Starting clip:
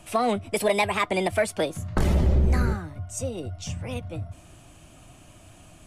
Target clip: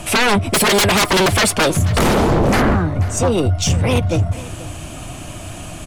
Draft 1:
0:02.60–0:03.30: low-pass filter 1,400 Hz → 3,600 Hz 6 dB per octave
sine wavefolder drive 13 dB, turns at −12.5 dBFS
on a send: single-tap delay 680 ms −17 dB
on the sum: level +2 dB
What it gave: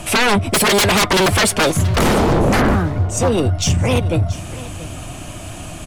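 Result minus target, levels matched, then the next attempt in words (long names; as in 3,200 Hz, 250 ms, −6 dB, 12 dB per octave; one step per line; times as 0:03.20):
echo 195 ms late
0:02.60–0:03.30: low-pass filter 1,400 Hz → 3,600 Hz 6 dB per octave
sine wavefolder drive 13 dB, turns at −12.5 dBFS
on a send: single-tap delay 485 ms −17 dB
on the sum: level +2 dB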